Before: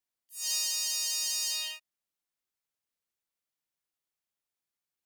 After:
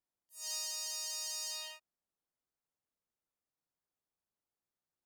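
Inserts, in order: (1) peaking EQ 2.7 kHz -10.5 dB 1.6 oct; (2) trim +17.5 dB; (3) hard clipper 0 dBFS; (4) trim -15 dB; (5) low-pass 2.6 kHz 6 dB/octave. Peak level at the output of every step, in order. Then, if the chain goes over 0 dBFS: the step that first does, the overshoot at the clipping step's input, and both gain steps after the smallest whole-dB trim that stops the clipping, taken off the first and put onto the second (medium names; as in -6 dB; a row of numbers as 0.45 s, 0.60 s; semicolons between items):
-20.0 dBFS, -2.5 dBFS, -2.5 dBFS, -17.5 dBFS, -26.5 dBFS; nothing clips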